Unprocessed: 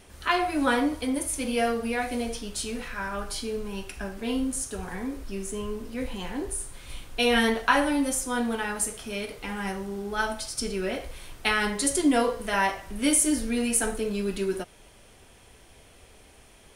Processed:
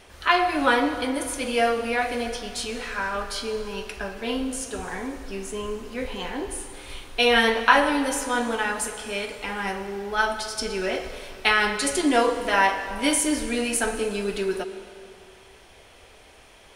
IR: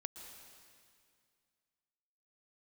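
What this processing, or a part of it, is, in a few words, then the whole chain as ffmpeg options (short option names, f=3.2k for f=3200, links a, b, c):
filtered reverb send: -filter_complex "[0:a]asplit=2[a][b];[b]highpass=350,lowpass=6.3k[c];[1:a]atrim=start_sample=2205[d];[c][d]afir=irnorm=-1:irlink=0,volume=4.5dB[e];[a][e]amix=inputs=2:normalize=0,volume=-1dB"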